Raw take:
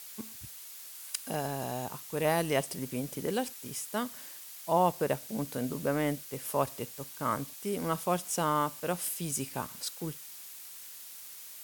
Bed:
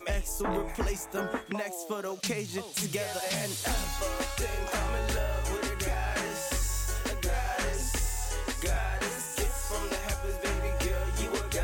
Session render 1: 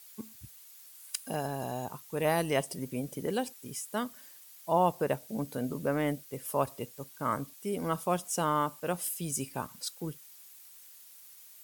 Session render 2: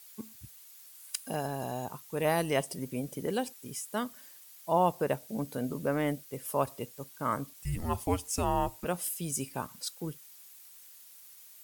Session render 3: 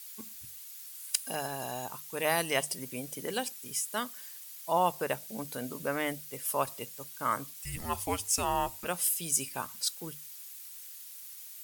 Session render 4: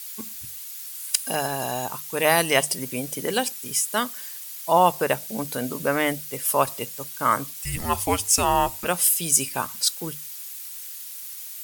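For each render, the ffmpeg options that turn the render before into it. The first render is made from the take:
-af "afftdn=nr=9:nf=-47"
-filter_complex "[0:a]asplit=3[a][b][c];[a]afade=t=out:st=7.53:d=0.02[d];[b]afreqshift=-260,afade=t=in:st=7.53:d=0.02,afade=t=out:st=8.84:d=0.02[e];[c]afade=t=in:st=8.84:d=0.02[f];[d][e][f]amix=inputs=3:normalize=0"
-af "tiltshelf=f=870:g=-6.5,bandreject=f=50:t=h:w=6,bandreject=f=100:t=h:w=6,bandreject=f=150:t=h:w=6,bandreject=f=200:t=h:w=6"
-af "volume=9.5dB,alimiter=limit=-3dB:level=0:latency=1"

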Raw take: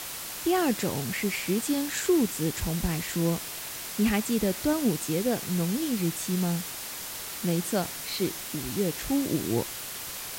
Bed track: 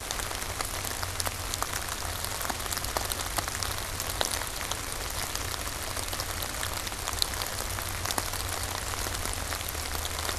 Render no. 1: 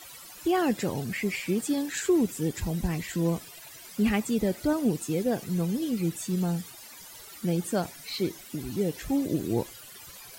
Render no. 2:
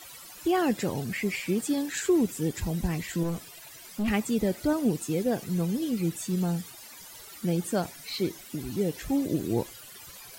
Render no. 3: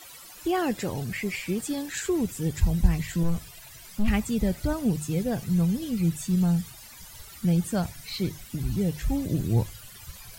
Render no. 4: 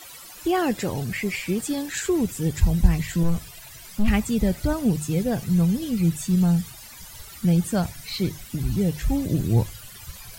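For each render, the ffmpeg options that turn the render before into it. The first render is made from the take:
-af "afftdn=nr=15:nf=-38"
-filter_complex "[0:a]asettb=1/sr,asplit=3[a][b][c];[a]atrim=end=3.234[d];[b]atrim=start=3.23:end=4.08,asetpts=PTS-STARTPTS,afade=t=in:d=0.004:c=qsin,afade=t=out:st=0.846:d=0.004:c=qsin,aeval=exprs='(tanh(15.8*val(0)+0.25)-tanh(0.25))/15.8':c=same[e];[c]atrim=start=4.076[f];[d][e]acrossfade=d=0.004:c1=hsin:c2=qsin[g];[g][f]acrossfade=d=0.004:c1=qsin:c2=hsin"
-af "bandreject=f=50:t=h:w=6,bandreject=f=100:t=h:w=6,bandreject=f=150:t=h:w=6,asubboost=boost=9:cutoff=110"
-af "volume=3.5dB"

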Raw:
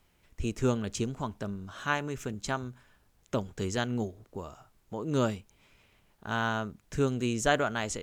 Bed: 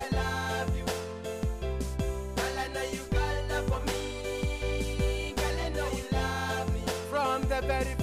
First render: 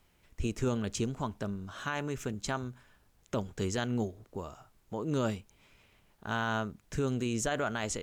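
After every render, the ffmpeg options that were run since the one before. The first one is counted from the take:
-af "alimiter=limit=-21.5dB:level=0:latency=1:release=31"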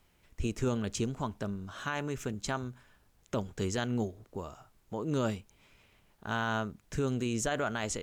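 -af anull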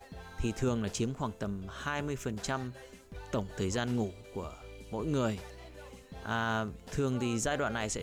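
-filter_complex "[1:a]volume=-18dB[a];[0:a][a]amix=inputs=2:normalize=0"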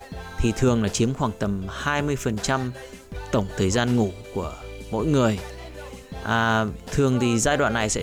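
-af "volume=11dB"

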